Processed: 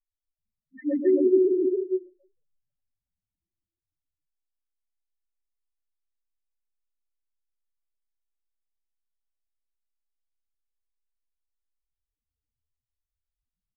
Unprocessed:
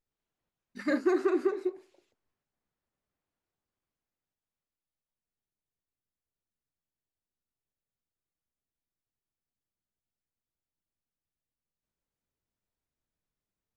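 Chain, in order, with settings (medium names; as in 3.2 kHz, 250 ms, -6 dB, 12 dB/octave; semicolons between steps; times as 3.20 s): short-time spectra conjugated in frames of 54 ms; loudest bins only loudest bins 2; loudspeakers at several distances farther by 45 m -7 dB, 93 m 0 dB; trim +9 dB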